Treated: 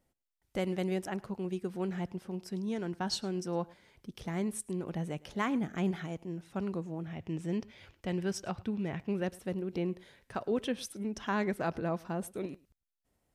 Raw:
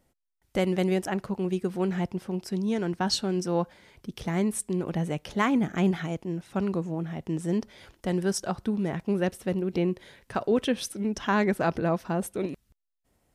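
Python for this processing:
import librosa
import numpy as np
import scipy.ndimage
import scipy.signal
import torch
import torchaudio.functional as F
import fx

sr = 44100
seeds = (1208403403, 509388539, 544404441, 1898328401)

y = fx.graphic_eq_15(x, sr, hz=(100, 2500, 10000), db=(9, 7, -7), at=(7.07, 9.22))
y = y + 10.0 ** (-23.0 / 20.0) * np.pad(y, (int(107 * sr / 1000.0), 0))[:len(y)]
y = y * 10.0 ** (-7.5 / 20.0)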